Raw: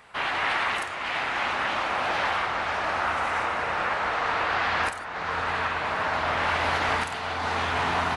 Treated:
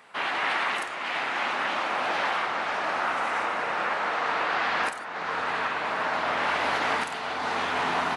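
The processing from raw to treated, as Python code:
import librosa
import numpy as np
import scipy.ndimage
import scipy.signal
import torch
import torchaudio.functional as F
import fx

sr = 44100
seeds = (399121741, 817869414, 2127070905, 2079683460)

y = scipy.signal.sosfilt(scipy.signal.cheby1(2, 1.0, 220.0, 'highpass', fs=sr, output='sos'), x)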